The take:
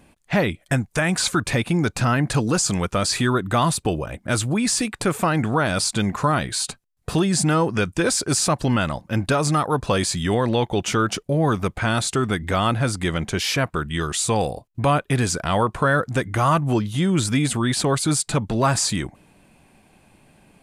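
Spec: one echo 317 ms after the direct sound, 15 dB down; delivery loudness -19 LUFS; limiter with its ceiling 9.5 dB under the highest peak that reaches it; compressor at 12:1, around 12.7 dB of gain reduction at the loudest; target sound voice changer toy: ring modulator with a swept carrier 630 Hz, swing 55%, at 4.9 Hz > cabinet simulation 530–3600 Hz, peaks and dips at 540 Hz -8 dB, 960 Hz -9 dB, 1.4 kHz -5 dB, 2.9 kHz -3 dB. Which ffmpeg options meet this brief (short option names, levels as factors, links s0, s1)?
-af "acompressor=threshold=0.0398:ratio=12,alimiter=limit=0.0631:level=0:latency=1,aecho=1:1:317:0.178,aeval=exprs='val(0)*sin(2*PI*630*n/s+630*0.55/4.9*sin(2*PI*4.9*n/s))':c=same,highpass=530,equalizer=f=540:t=q:w=4:g=-8,equalizer=f=960:t=q:w=4:g=-9,equalizer=f=1400:t=q:w=4:g=-5,equalizer=f=2900:t=q:w=4:g=-3,lowpass=f=3600:w=0.5412,lowpass=f=3600:w=1.3066,volume=15.8"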